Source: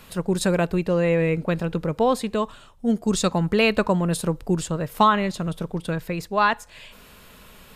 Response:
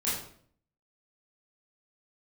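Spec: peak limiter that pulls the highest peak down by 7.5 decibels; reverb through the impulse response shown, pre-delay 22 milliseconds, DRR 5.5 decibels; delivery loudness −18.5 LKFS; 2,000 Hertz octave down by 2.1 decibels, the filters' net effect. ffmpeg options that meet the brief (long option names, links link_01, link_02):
-filter_complex "[0:a]equalizer=frequency=2000:width_type=o:gain=-3,alimiter=limit=-14.5dB:level=0:latency=1,asplit=2[link_01][link_02];[1:a]atrim=start_sample=2205,adelay=22[link_03];[link_02][link_03]afir=irnorm=-1:irlink=0,volume=-13dB[link_04];[link_01][link_04]amix=inputs=2:normalize=0,volume=5.5dB"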